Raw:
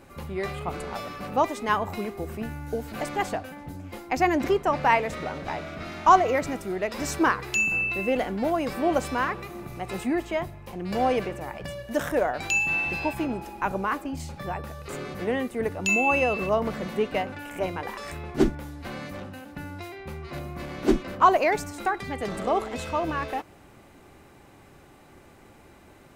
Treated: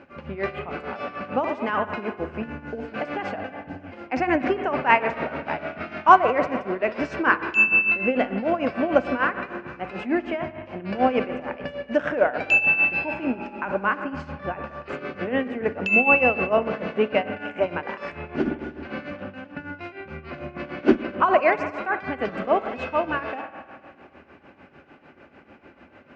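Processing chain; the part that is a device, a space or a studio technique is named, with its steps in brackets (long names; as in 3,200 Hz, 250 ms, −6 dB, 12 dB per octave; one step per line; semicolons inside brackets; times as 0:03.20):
combo amplifier with spring reverb and tremolo (spring reverb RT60 2.1 s, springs 51 ms, chirp 65 ms, DRR 9 dB; amplitude tremolo 6.7 Hz, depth 75%; loudspeaker in its box 88–4,200 Hz, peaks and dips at 120 Hz −8 dB, 250 Hz +5 dB, 570 Hz +5 dB, 1,500 Hz +7 dB, 2,600 Hz +6 dB, 3,800 Hz −9 dB)
level +3 dB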